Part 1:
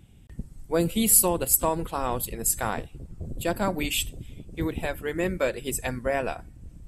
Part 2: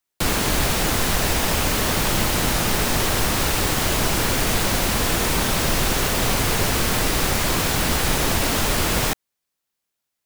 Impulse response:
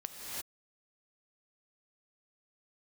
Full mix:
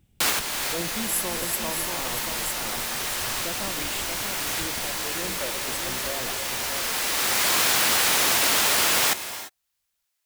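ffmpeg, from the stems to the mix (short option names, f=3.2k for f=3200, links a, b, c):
-filter_complex "[0:a]volume=-12dB,asplit=4[a][b][c][d];[b]volume=-5dB[e];[c]volume=-3.5dB[f];[1:a]highpass=f=1.2k:p=1,volume=1.5dB,asplit=2[g][h];[h]volume=-9.5dB[i];[d]apad=whole_len=452276[j];[g][j]sidechaincompress=threshold=-56dB:ratio=8:attack=16:release=828[k];[2:a]atrim=start_sample=2205[l];[e][i]amix=inputs=2:normalize=0[m];[m][l]afir=irnorm=-1:irlink=0[n];[f]aecho=0:1:634|1268|1902|2536|3170:1|0.34|0.116|0.0393|0.0134[o];[a][k][n][o]amix=inputs=4:normalize=0"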